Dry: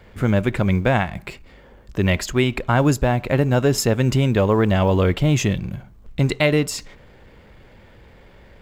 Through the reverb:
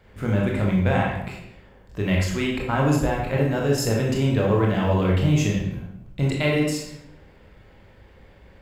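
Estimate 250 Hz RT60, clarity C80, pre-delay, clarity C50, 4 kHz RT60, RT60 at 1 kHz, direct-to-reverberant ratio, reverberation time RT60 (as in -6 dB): 0.95 s, 6.0 dB, 20 ms, 2.5 dB, 0.60 s, 0.80 s, -2.5 dB, 0.85 s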